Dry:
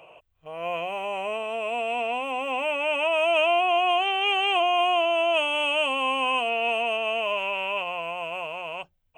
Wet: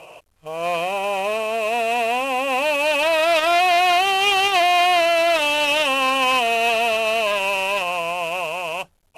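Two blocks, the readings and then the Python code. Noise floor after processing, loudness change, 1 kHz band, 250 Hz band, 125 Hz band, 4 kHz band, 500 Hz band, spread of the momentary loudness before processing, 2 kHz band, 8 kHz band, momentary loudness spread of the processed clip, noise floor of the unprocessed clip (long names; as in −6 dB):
−58 dBFS, +6.0 dB, +6.0 dB, +6.0 dB, can't be measured, +6.0 dB, +5.5 dB, 10 LU, +6.5 dB, +16.5 dB, 8 LU, −66 dBFS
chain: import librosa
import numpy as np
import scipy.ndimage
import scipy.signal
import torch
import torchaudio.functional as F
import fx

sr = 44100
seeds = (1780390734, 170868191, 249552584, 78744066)

y = fx.cvsd(x, sr, bps=64000)
y = fx.transformer_sat(y, sr, knee_hz=1800.0)
y = y * librosa.db_to_amplitude(8.0)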